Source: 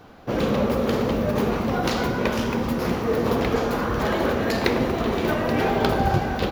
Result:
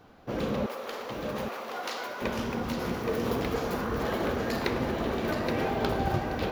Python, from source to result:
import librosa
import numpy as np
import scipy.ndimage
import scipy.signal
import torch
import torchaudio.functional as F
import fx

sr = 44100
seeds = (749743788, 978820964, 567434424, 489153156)

y = fx.highpass(x, sr, hz=660.0, slope=12, at=(0.66, 2.22))
y = fx.high_shelf(y, sr, hz=6200.0, db=6.0, at=(2.94, 3.82))
y = y + 10.0 ** (-5.5 / 20.0) * np.pad(y, (int(823 * sr / 1000.0), 0))[:len(y)]
y = y * librosa.db_to_amplitude(-8.0)